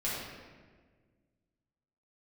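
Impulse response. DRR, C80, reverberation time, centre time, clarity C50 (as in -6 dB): -9.0 dB, 1.0 dB, 1.6 s, 95 ms, -1.5 dB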